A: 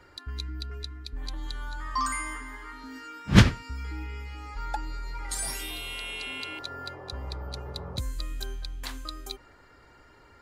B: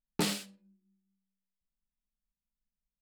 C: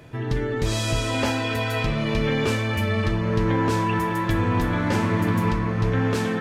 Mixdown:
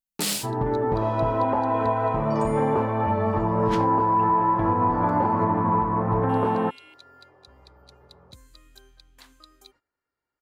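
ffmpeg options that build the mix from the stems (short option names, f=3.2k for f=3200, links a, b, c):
-filter_complex "[0:a]agate=range=-18dB:threshold=-46dB:ratio=16:detection=peak,adelay=350,volume=-12.5dB,asplit=3[a][b][c];[a]atrim=end=5.44,asetpts=PTS-STARTPTS,afade=t=out:st=5.436:d=0.004:c=hsin[d];[b]atrim=start=5.44:end=6.29,asetpts=PTS-STARTPTS,volume=0[e];[c]atrim=start=6.29,asetpts=PTS-STARTPTS,afade=t=in:d=0.004:c=hsin[f];[d][e][f]concat=n=3:v=0:a=1[g];[1:a]dynaudnorm=f=120:g=5:m=14dB,highshelf=f=5.1k:g=10.5,volume=-4.5dB[h];[2:a]lowpass=f=910:t=q:w=4,adelay=300,volume=1dB[i];[g][h][i]amix=inputs=3:normalize=0,lowshelf=f=83:g=-11.5,alimiter=limit=-12.5dB:level=0:latency=1:release=231"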